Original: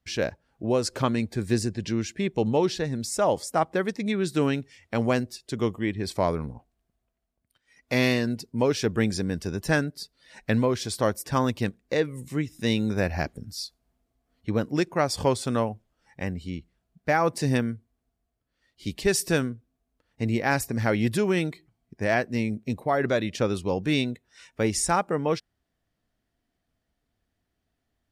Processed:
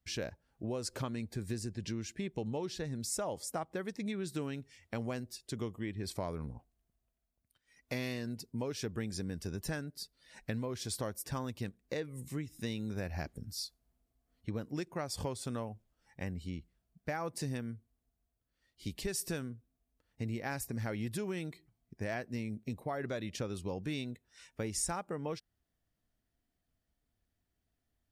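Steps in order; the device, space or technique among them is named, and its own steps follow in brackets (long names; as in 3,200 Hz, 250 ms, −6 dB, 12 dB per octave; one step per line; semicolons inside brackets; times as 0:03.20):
ASMR close-microphone chain (low-shelf EQ 130 Hz +6 dB; downward compressor 4 to 1, threshold −27 dBFS, peak gain reduction 10 dB; high-shelf EQ 7,400 Hz +8 dB)
level −8 dB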